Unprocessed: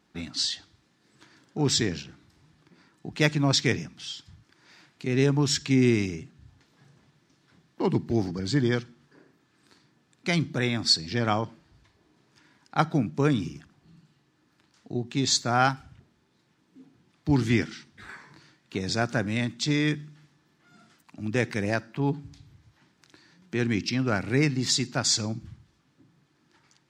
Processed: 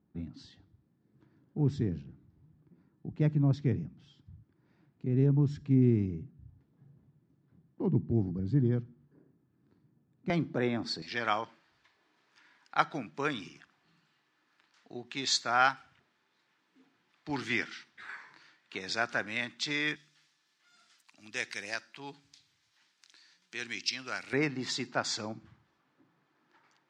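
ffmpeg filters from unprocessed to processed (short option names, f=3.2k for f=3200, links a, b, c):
-af "asetnsamples=n=441:p=0,asendcmd='10.3 bandpass f 510;11.02 bandpass f 1900;19.96 bandpass f 4700;24.33 bandpass f 980',bandpass=f=110:t=q:w=0.65:csg=0"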